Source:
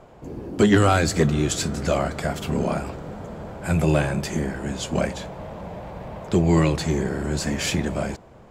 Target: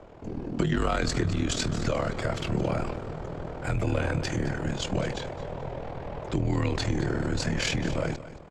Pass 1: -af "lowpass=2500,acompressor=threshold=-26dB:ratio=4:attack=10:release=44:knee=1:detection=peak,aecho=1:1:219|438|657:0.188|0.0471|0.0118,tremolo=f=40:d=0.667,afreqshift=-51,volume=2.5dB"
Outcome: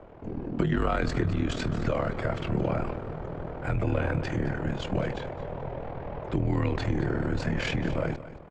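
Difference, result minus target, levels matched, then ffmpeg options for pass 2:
8,000 Hz band −12.5 dB
-af "lowpass=5800,acompressor=threshold=-26dB:ratio=4:attack=10:release=44:knee=1:detection=peak,aecho=1:1:219|438|657:0.188|0.0471|0.0118,tremolo=f=40:d=0.667,afreqshift=-51,volume=2.5dB"

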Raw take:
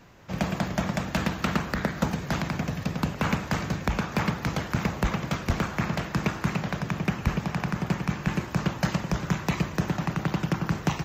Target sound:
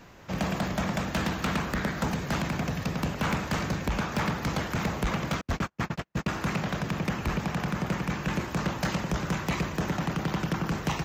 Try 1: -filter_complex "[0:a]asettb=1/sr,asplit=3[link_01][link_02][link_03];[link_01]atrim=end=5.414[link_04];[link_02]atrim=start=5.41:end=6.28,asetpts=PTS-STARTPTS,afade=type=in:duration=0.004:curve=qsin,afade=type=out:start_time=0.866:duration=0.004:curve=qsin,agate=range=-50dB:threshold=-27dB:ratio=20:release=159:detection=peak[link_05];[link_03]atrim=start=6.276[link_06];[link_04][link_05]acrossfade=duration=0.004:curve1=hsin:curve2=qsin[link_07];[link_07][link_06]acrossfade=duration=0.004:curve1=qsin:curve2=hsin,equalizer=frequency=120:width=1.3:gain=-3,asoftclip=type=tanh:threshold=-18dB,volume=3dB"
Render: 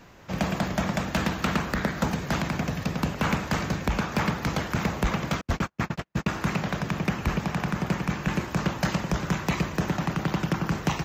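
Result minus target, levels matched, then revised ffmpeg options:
soft clipping: distortion −7 dB
-filter_complex "[0:a]asettb=1/sr,asplit=3[link_01][link_02][link_03];[link_01]atrim=end=5.414[link_04];[link_02]atrim=start=5.41:end=6.28,asetpts=PTS-STARTPTS,afade=type=in:duration=0.004:curve=qsin,afade=type=out:start_time=0.866:duration=0.004:curve=qsin,agate=range=-50dB:threshold=-27dB:ratio=20:release=159:detection=peak[link_05];[link_03]atrim=start=6.276[link_06];[link_04][link_05]acrossfade=duration=0.004:curve1=hsin:curve2=qsin[link_07];[link_07][link_06]acrossfade=duration=0.004:curve1=qsin:curve2=hsin,equalizer=frequency=120:width=1.3:gain=-3,asoftclip=type=tanh:threshold=-25dB,volume=3dB"

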